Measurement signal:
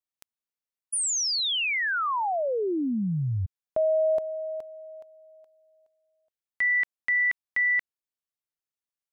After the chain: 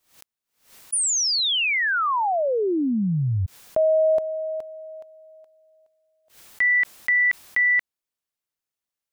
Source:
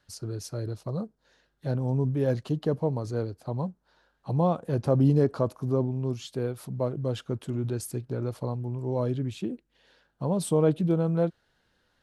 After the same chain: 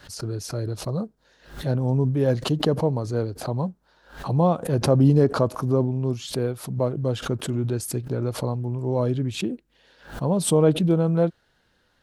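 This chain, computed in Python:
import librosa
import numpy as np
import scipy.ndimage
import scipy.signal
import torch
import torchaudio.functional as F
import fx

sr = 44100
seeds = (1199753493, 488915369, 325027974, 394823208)

y = fx.pre_swell(x, sr, db_per_s=130.0)
y = F.gain(torch.from_numpy(y), 4.5).numpy()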